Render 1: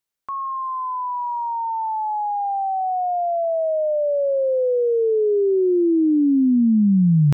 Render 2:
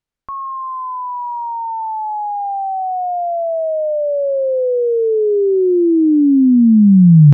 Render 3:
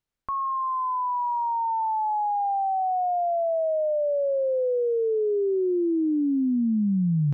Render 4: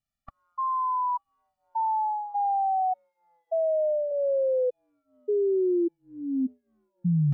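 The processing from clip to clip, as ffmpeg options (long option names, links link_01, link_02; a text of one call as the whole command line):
ffmpeg -i in.wav -af "aemphasis=mode=reproduction:type=bsi,volume=2dB" out.wav
ffmpeg -i in.wav -af "acompressor=threshold=-21dB:ratio=6,volume=-2dB" out.wav
ffmpeg -i in.wav -af "afftfilt=real='re*gt(sin(2*PI*0.85*pts/sr)*(1-2*mod(floor(b*sr/1024/280),2)),0)':imag='im*gt(sin(2*PI*0.85*pts/sr)*(1-2*mod(floor(b*sr/1024/280),2)),0)':win_size=1024:overlap=0.75" out.wav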